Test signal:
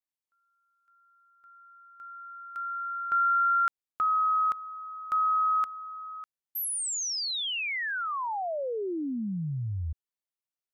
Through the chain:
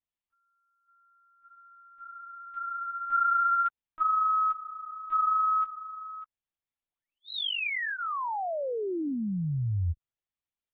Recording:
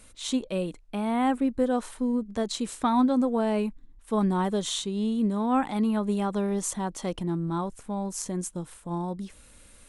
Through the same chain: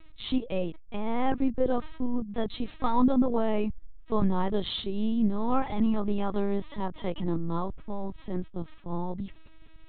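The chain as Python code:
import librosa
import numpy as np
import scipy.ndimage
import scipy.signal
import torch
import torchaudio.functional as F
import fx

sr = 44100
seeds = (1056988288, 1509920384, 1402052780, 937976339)

y = fx.low_shelf(x, sr, hz=73.0, db=10.5)
y = fx.lpc_vocoder(y, sr, seeds[0], excitation='pitch_kept', order=10)
y = fx.notch(y, sr, hz=1500.0, q=14.0)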